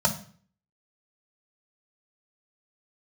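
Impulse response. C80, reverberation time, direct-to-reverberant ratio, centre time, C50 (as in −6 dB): 16.5 dB, 0.45 s, 0.0 dB, 10 ms, 12.5 dB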